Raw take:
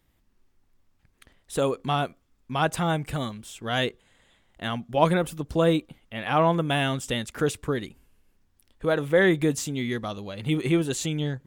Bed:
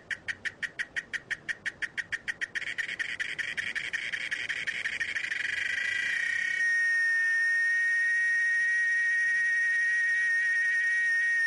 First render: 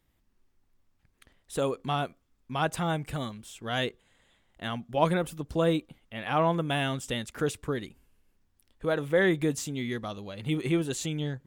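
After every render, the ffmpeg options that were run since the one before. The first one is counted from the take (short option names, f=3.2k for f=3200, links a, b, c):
-af "volume=-4dB"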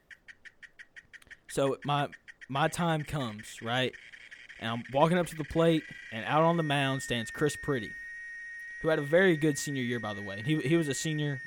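-filter_complex "[1:a]volume=-16.5dB[a];[0:a][a]amix=inputs=2:normalize=0"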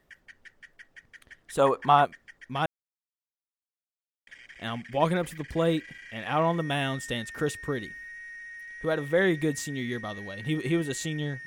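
-filter_complex "[0:a]asettb=1/sr,asplit=3[a][b][c];[a]atrim=end=1.594[d];[b]atrim=start=1.59:end=2.05,asetpts=PTS-STARTPTS,afade=t=in:d=0.004:c=qsin,afade=t=out:st=0.456:d=0.004:c=qsin,equalizer=f=950:w=0.87:g=14[e];[c]atrim=start=2.046[f];[d][e]acrossfade=d=0.004:c1=hsin:c2=qsin[g];[g][f]acrossfade=d=0.004:c1=qsin:c2=hsin,asplit=3[h][i][j];[h]atrim=end=2.66,asetpts=PTS-STARTPTS,afade=t=out:st=2.656:d=0.004:c=hsin[k];[i]atrim=start=2.66:end=4.27,asetpts=PTS-STARTPTS,volume=0[l];[j]atrim=start=4.27,asetpts=PTS-STARTPTS,afade=t=in:d=0.004:c=hsin[m];[k][l][m]concat=n=3:v=0:a=1"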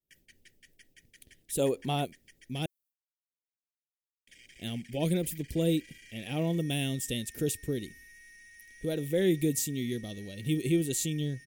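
-af "agate=range=-33dB:threshold=-55dB:ratio=3:detection=peak,firequalizer=gain_entry='entry(360,0);entry(1100,-26);entry(2400,-3);entry(13000,13)':delay=0.05:min_phase=1"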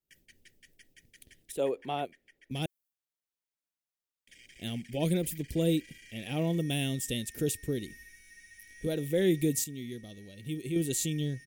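-filter_complex "[0:a]asettb=1/sr,asplit=3[a][b][c];[a]atrim=end=1.524[d];[b]atrim=start=1.52:end=2.51,asetpts=PTS-STARTPTS,afade=t=in:d=0.004:c=qsin,afade=t=out:st=0.986:d=0.004:c=qsin,acrossover=split=330 2900:gain=0.224 1 0.2[e][f][g];[e][f][g]amix=inputs=3:normalize=0[h];[c]atrim=start=2.506[i];[d][h]acrossfade=d=0.004:c1=hsin:c2=qsin[j];[j][i]acrossfade=d=0.004:c1=qsin:c2=hsin,asettb=1/sr,asplit=3[k][l][m];[k]atrim=end=7.874[n];[l]atrim=start=7.87:end=8.87,asetpts=PTS-STARTPTS,afade=t=in:d=0.004:c=qsin,afade=t=out:st=0.996:d=0.004:c=qsin,asplit=2[o][p];[p]adelay=20,volume=-3dB[q];[o][q]amix=inputs=2:normalize=0,atrim=end_sample=44100[r];[m]atrim=start=8.866[s];[n][r]acrossfade=d=0.004:c1=hsin:c2=qsin[t];[t][s]acrossfade=d=0.004:c1=qsin:c2=hsin,asplit=3[u][v][w];[u]atrim=end=9.642[x];[v]atrim=start=9.638:end=10.762,asetpts=PTS-STARTPTS,volume=-7dB[y];[w]atrim=start=10.758[z];[x][y]acrossfade=d=0.004:c1=hsin:c2=hsin[aa];[aa][z]acrossfade=d=0.004:c1=hsin:c2=hsin"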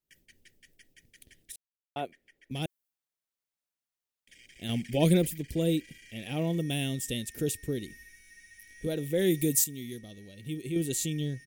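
-filter_complex "[0:a]asettb=1/sr,asplit=3[a][b][c];[a]atrim=end=4.694[d];[b]atrim=start=4.69:end=5.27,asetpts=PTS-STARTPTS,afade=t=in:d=0.004:c=qsin,afade=t=out:st=0.576:d=0.004:c=qsin,acontrast=47[e];[c]atrim=start=5.266[f];[d][e]acrossfade=d=0.004:c1=hsin:c2=qsin[g];[g][f]acrossfade=d=0.004:c1=qsin:c2=hsin,asettb=1/sr,asplit=3[h][i][j];[h]atrim=end=9.194[k];[i]atrim=start=9.19:end=9.99,asetpts=PTS-STARTPTS,afade=t=in:d=0.004:c=qsin,afade=t=out:st=0.796:d=0.004:c=qsin,highshelf=f=7k:g=11[l];[j]atrim=start=9.986[m];[k][l]acrossfade=d=0.004:c1=hsin:c2=qsin[n];[n][m]acrossfade=d=0.004:c1=qsin:c2=hsin,asplit=3[o][p][q];[o]atrim=end=1.56,asetpts=PTS-STARTPTS,afade=t=out:st=1.556:d=0.004:c=hsin[r];[p]atrim=start=1.56:end=1.96,asetpts=PTS-STARTPTS,volume=0[s];[q]atrim=start=1.96,asetpts=PTS-STARTPTS,afade=t=in:d=0.004:c=hsin[t];[r][s][t]concat=n=3:v=0:a=1"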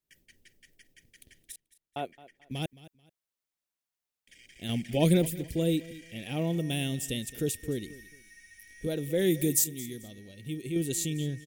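-af "aecho=1:1:218|436:0.119|0.0321"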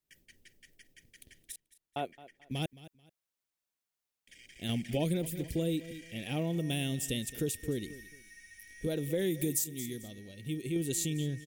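-af "acompressor=threshold=-28dB:ratio=6"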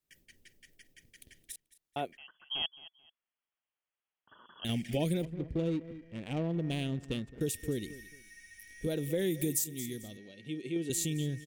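-filter_complex "[0:a]asettb=1/sr,asplit=3[a][b][c];[a]atrim=end=2.174[d];[b]atrim=start=2.17:end=4.65,asetpts=PTS-STARTPTS,afade=t=in:d=0.004:c=qsin,afade=t=out:st=2.476:d=0.004:c=qsin,lowpass=f=2.9k:t=q:w=0.5098,lowpass=f=2.9k:t=q:w=0.6013,lowpass=f=2.9k:t=q:w=0.9,lowpass=f=2.9k:t=q:w=2.563,afreqshift=-3400[e];[c]atrim=start=4.646[f];[d][e]acrossfade=d=0.004:c1=hsin:c2=qsin[g];[g][f]acrossfade=d=0.004:c1=qsin:c2=hsin,asettb=1/sr,asplit=3[h][i][j];[h]atrim=end=5.254[k];[i]atrim=start=5.25:end=7.41,asetpts=PTS-STARTPTS,afade=t=in:d=0.004:c=qsin,afade=t=out:st=2.156:d=0.004:c=qsin,adynamicsmooth=sensitivity=5.5:basefreq=770[l];[j]atrim=start=7.406[m];[k][l]acrossfade=d=0.004:c1=hsin:c2=qsin[n];[n][m]acrossfade=d=0.004:c1=qsin:c2=hsin,asettb=1/sr,asplit=3[o][p][q];[o]atrim=end=10.174[r];[p]atrim=start=10.17:end=10.9,asetpts=PTS-STARTPTS,afade=t=in:d=0.004:c=qsin,afade=t=out:st=0.726:d=0.004:c=qsin,highpass=210,lowpass=4.9k[s];[q]atrim=start=10.896[t];[r][s]acrossfade=d=0.004:c1=hsin:c2=qsin[u];[u][t]acrossfade=d=0.004:c1=qsin:c2=hsin"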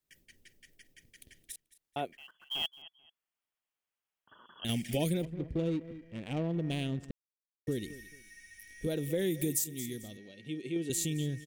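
-filter_complex "[0:a]asettb=1/sr,asplit=3[a][b][c];[a]atrim=end=2.134[d];[b]atrim=start=2.13:end=2.82,asetpts=PTS-STARTPTS,afade=t=in:d=0.004:c=qsin,afade=t=out:st=0.686:d=0.004:c=qsin,acrusher=bits=4:mode=log:mix=0:aa=0.000001[e];[c]atrim=start=2.816[f];[d][e]acrossfade=d=0.004:c1=hsin:c2=qsin[g];[g][f]acrossfade=d=0.004:c1=qsin:c2=hsin,asettb=1/sr,asplit=3[h][i][j];[h]atrim=end=4.684[k];[i]atrim=start=4.68:end=5.1,asetpts=PTS-STARTPTS,afade=t=in:d=0.004:c=qsin,afade=t=out:st=0.416:d=0.004:c=qsin,highshelf=f=5.5k:g=9.5[l];[j]atrim=start=5.096[m];[k][l]acrossfade=d=0.004:c1=hsin:c2=qsin[n];[n][m]acrossfade=d=0.004:c1=qsin:c2=hsin,asplit=3[o][p][q];[o]atrim=end=7.11,asetpts=PTS-STARTPTS,afade=t=out:st=7.106:d=0.004:c=hsin[r];[p]atrim=start=7.11:end=7.67,asetpts=PTS-STARTPTS,volume=0[s];[q]atrim=start=7.67,asetpts=PTS-STARTPTS,afade=t=in:d=0.004:c=hsin[t];[r][s][t]concat=n=3:v=0:a=1"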